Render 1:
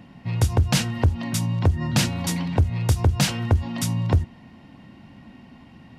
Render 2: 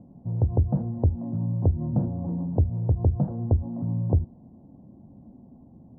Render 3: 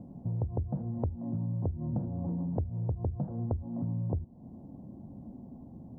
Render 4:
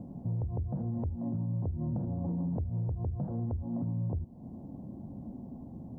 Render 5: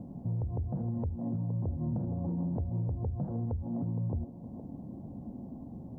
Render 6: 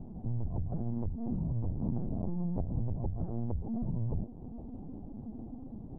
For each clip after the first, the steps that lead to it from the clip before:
inverse Chebyshev low-pass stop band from 2300 Hz, stop band 60 dB; gain -2.5 dB
compressor 4:1, threshold -34 dBFS, peak gain reduction 15 dB; gain +2.5 dB
limiter -29.5 dBFS, peak gain reduction 11 dB; gain +3 dB
band-limited delay 0.466 s, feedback 36%, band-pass 470 Hz, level -7.5 dB
LPC vocoder at 8 kHz pitch kept

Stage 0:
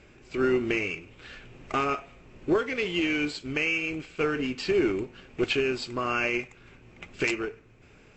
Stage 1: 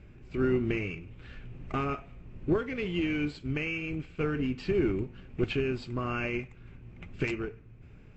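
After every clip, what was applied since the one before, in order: tone controls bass +14 dB, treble -9 dB; gain -6.5 dB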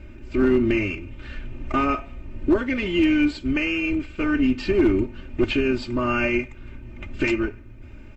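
in parallel at -1.5 dB: limiter -24.5 dBFS, peak gain reduction 9 dB; on the sum: comb 3.3 ms, depth 89%; hard clip -14 dBFS, distortion -27 dB; gain +2.5 dB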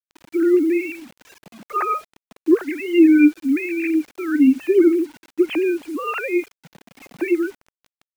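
sine-wave speech; bit-crush 8-bit; gain +3.5 dB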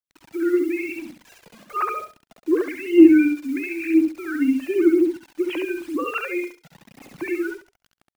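phaser 1 Hz, delay 2.2 ms, feedback 55%; on a send: feedback echo 68 ms, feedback 18%, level -4.5 dB; on the sum: gain -4 dB

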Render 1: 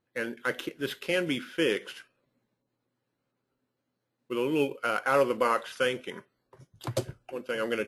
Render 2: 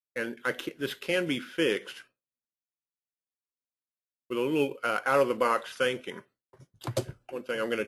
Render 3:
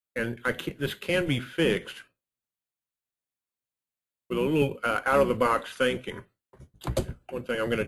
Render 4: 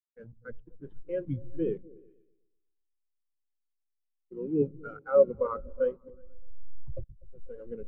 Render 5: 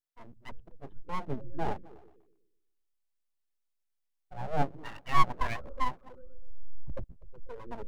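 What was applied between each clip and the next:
expander -52 dBFS
octaver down 1 oct, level -1 dB; bell 5400 Hz -8 dB 0.32 oct; in parallel at -10.5 dB: one-sided clip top -27 dBFS
level-crossing sampler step -25.5 dBFS; repeats that get brighter 0.123 s, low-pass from 200 Hz, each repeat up 2 oct, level -6 dB; spectral expander 2.5:1
full-wave rectifier; gain +1.5 dB

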